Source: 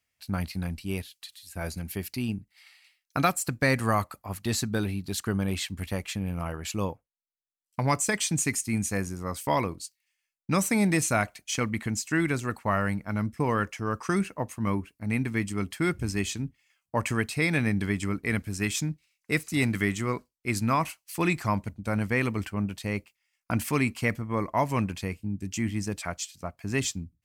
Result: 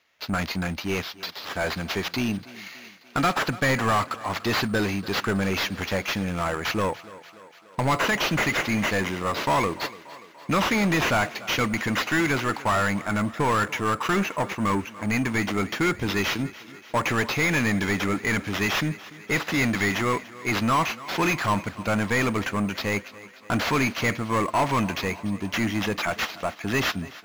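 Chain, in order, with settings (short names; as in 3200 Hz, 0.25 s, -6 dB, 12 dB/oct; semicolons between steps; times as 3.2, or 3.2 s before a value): sample-and-hold 5×; overdrive pedal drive 23 dB, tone 2900 Hz, clips at -15 dBFS; on a send: thinning echo 0.291 s, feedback 64%, high-pass 190 Hz, level -18 dB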